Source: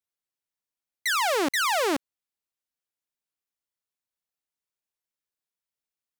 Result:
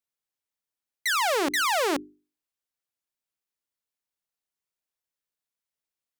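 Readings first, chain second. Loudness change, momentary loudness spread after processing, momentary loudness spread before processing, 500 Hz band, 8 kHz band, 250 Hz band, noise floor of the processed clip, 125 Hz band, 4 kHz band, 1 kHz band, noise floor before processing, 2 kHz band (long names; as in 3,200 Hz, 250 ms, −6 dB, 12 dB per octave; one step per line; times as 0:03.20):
0.0 dB, 7 LU, 7 LU, 0.0 dB, 0.0 dB, −1.0 dB, below −85 dBFS, can't be measured, 0.0 dB, 0.0 dB, below −85 dBFS, 0.0 dB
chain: mains-hum notches 50/100/150/200/250/300/350/400 Hz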